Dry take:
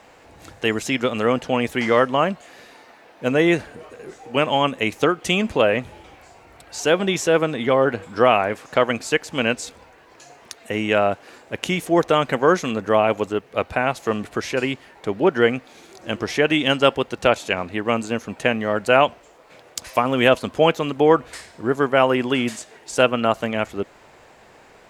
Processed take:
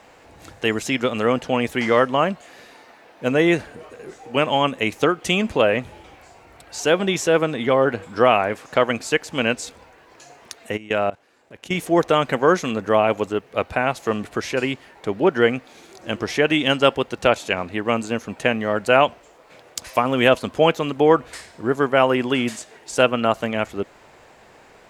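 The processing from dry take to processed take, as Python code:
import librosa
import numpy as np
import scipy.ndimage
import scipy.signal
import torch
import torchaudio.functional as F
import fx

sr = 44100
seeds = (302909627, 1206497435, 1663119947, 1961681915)

y = fx.level_steps(x, sr, step_db=20, at=(10.76, 11.73), fade=0.02)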